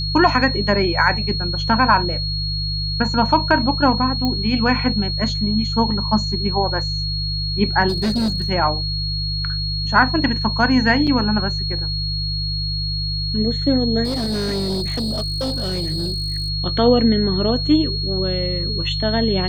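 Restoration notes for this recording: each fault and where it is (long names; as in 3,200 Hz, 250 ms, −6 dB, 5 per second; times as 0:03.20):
mains hum 50 Hz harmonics 3 −25 dBFS
whistle 4,300 Hz −24 dBFS
0:04.25: click −10 dBFS
0:07.88–0:08.50: clipping −16 dBFS
0:11.07–0:11.08: drop-out 5.8 ms
0:14.04–0:16.50: clipping −19 dBFS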